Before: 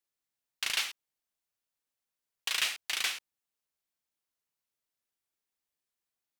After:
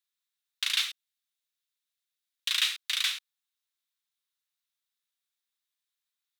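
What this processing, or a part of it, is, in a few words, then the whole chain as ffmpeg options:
headphones lying on a table: -filter_complex "[0:a]highpass=f=1100:w=0.5412,highpass=f=1100:w=1.3066,equalizer=f=3700:t=o:w=0.33:g=9.5,asettb=1/sr,asplit=3[s0][s1][s2];[s0]atrim=end=0.894[s3];[s1]atrim=start=0.89:end=2.5,asetpts=PTS-STARTPTS,afade=t=in:d=0.004:c=qsin,afade=t=out:st=1.606:d=0.004:c=qsin,highpass=1300[s4];[s2]atrim=start=2.496[s5];[s3][s4]acrossfade=d=0.004:c1=hsin:c2=qsin[s6];[s6][s5]acrossfade=d=0.004:c1=qsin:c2=hsin"

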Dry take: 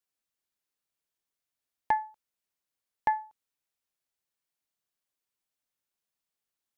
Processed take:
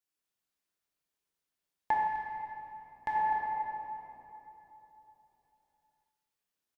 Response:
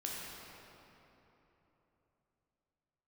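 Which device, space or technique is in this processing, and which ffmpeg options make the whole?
cave: -filter_complex "[0:a]aecho=1:1:254:0.178[s0];[1:a]atrim=start_sample=2205[s1];[s0][s1]afir=irnorm=-1:irlink=0,asettb=1/sr,asplit=3[s2][s3][s4];[s2]atrim=end=2.074[s5];[s3]atrim=start=2.07:end=3.15,asetpts=PTS-STARTPTS,afade=t=in:d=0.004:c=qsin,afade=t=out:st=1.076:d=0.004:c=qsin,equalizer=f=510:w=0.48:g=-7[s6];[s4]atrim=start=3.146[s7];[s5][s6]acrossfade=d=0.004:c1=hsin:c2=qsin[s8];[s8][s7]acrossfade=d=0.004:c1=qsin:c2=hsin"

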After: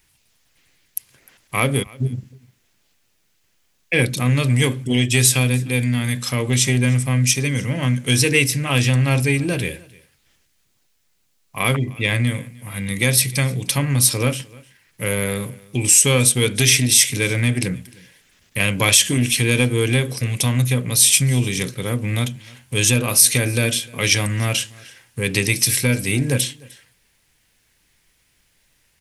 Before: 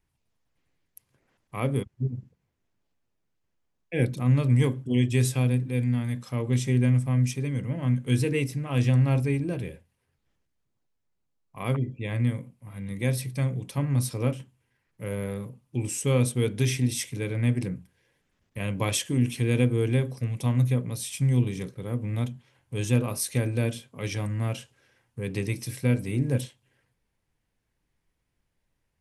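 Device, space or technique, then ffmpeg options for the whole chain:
mastering chain: -filter_complex "[0:a]equalizer=f=1000:t=o:w=1.1:g=-3.5,acompressor=threshold=0.0282:ratio=1.5,asoftclip=type=tanh:threshold=0.15,tiltshelf=f=1100:g=-7.5,alimiter=level_in=7.5:limit=0.891:release=50:level=0:latency=1,asettb=1/sr,asplit=3[s0][s1][s2];[s0]atrim=end=7.324[s3];[s1]atrim=start=7.32:end=8.38,asetpts=PTS-STARTPTS,afade=t=in:d=0.004:c=qsin,afade=t=out:st=1.056:d=0.004:c=qsin,equalizer=f=5700:t=o:w=0.3:g=6[s4];[s2]atrim=start=8.376[s5];[s3][s4]acrossfade=d=0.004:c1=hsin:c2=qsin[s6];[s6][s5]acrossfade=d=0.004:c1=qsin:c2=hsin,aecho=1:1:304:0.0631,volume=0.891"

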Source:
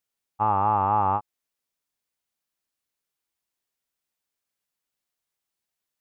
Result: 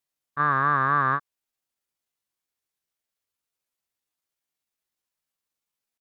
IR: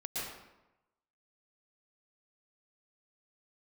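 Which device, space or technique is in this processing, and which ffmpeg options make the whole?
chipmunk voice: -af "asetrate=60591,aresample=44100,atempo=0.727827"

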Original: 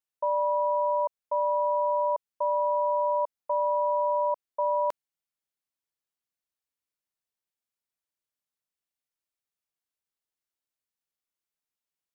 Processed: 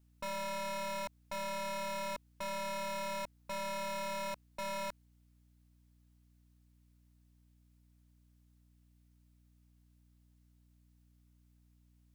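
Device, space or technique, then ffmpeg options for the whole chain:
valve amplifier with mains hum: -af "aeval=exprs='(tanh(251*val(0)+0.4)-tanh(0.4))/251':c=same,aeval=exprs='val(0)+0.000178*(sin(2*PI*60*n/s)+sin(2*PI*2*60*n/s)/2+sin(2*PI*3*60*n/s)/3+sin(2*PI*4*60*n/s)/4+sin(2*PI*5*60*n/s)/5)':c=same,volume=2.99"

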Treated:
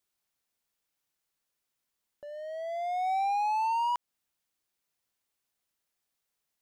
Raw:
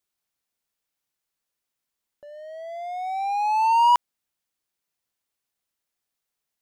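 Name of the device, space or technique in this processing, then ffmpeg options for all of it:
stacked limiters: -af "alimiter=limit=0.141:level=0:latency=1,alimiter=limit=0.0668:level=0:latency=1:release=181"

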